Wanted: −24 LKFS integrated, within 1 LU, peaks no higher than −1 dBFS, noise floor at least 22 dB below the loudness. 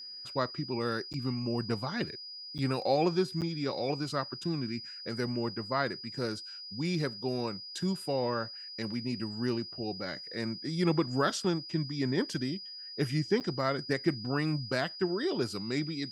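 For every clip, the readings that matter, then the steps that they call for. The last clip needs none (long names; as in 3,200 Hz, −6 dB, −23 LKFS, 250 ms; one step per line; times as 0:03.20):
number of dropouts 4; longest dropout 8.2 ms; interfering tone 4,900 Hz; level of the tone −42 dBFS; integrated loudness −33.0 LKFS; sample peak −14.0 dBFS; target loudness −24.0 LKFS
→ repair the gap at 0:01.13/0:02.58/0:03.41/0:13.40, 8.2 ms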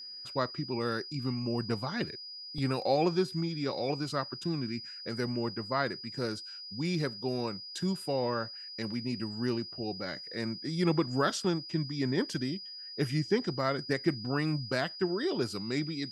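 number of dropouts 0; interfering tone 4,900 Hz; level of the tone −42 dBFS
→ notch filter 4,900 Hz, Q 30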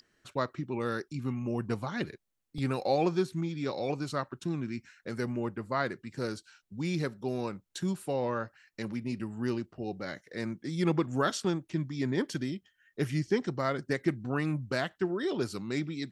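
interfering tone none found; integrated loudness −33.5 LKFS; sample peak −14.0 dBFS; target loudness −24.0 LKFS
→ level +9.5 dB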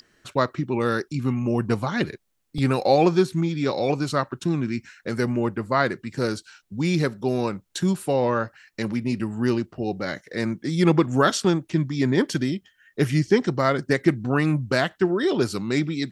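integrated loudness −24.0 LKFS; sample peak −4.5 dBFS; background noise floor −66 dBFS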